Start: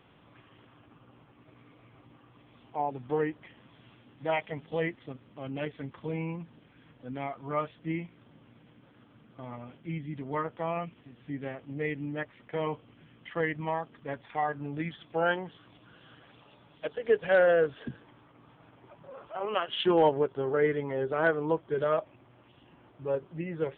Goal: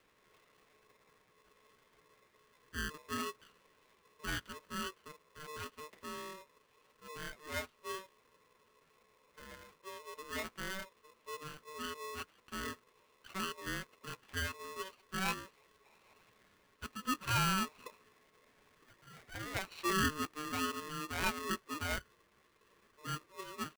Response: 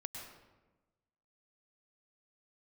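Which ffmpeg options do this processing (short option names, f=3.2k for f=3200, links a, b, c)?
-af "asetrate=49501,aresample=44100,atempo=0.890899,highpass=320,equalizer=f=330:t=q:w=4:g=3,equalizer=f=470:t=q:w=4:g=-5,equalizer=f=690:t=q:w=4:g=-4,lowpass=f=2.5k:w=0.5412,lowpass=f=2.5k:w=1.3066,aeval=exprs='val(0)*sgn(sin(2*PI*760*n/s))':c=same,volume=-7dB"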